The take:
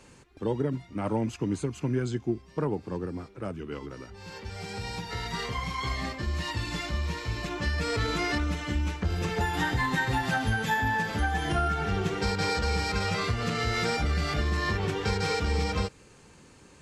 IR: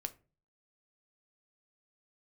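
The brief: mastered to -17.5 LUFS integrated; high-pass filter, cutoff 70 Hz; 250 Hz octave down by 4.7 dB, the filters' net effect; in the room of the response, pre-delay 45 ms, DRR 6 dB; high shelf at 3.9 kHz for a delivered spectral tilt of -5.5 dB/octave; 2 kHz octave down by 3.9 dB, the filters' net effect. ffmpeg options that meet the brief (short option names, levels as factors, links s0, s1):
-filter_complex "[0:a]highpass=70,equalizer=f=250:t=o:g=-6.5,equalizer=f=2000:t=o:g=-3.5,highshelf=f=3900:g=-5.5,asplit=2[s0][s1];[1:a]atrim=start_sample=2205,adelay=45[s2];[s1][s2]afir=irnorm=-1:irlink=0,volume=0.631[s3];[s0][s3]amix=inputs=2:normalize=0,volume=5.01"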